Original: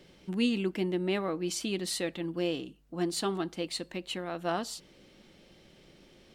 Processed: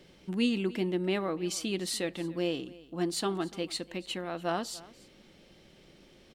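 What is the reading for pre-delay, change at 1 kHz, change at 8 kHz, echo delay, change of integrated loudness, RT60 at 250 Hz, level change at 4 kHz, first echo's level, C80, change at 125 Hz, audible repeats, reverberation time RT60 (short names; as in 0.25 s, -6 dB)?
none, 0.0 dB, 0.0 dB, 0.291 s, 0.0 dB, none, 0.0 dB, -20.5 dB, none, 0.0 dB, 1, none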